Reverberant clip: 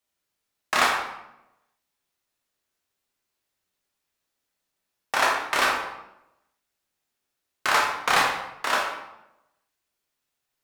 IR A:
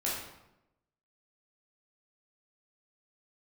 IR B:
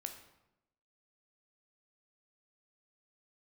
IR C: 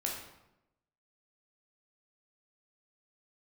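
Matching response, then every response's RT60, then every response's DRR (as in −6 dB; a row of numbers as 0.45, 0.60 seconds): C; 0.90, 0.90, 0.90 seconds; −6.5, 5.5, −2.0 decibels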